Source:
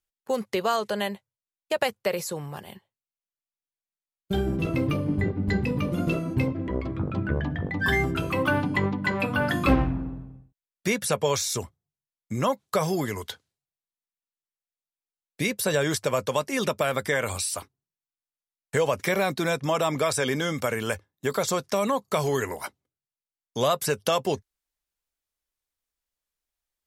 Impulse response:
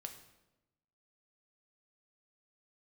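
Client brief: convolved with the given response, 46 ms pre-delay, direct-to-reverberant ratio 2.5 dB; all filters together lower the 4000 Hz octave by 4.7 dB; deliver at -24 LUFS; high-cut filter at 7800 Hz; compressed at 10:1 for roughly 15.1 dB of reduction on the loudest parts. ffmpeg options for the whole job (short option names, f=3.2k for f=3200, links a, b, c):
-filter_complex "[0:a]lowpass=7.8k,equalizer=f=4k:t=o:g=-6,acompressor=threshold=-30dB:ratio=10,asplit=2[a][b];[1:a]atrim=start_sample=2205,adelay=46[c];[b][c]afir=irnorm=-1:irlink=0,volume=1.5dB[d];[a][d]amix=inputs=2:normalize=0,volume=9.5dB"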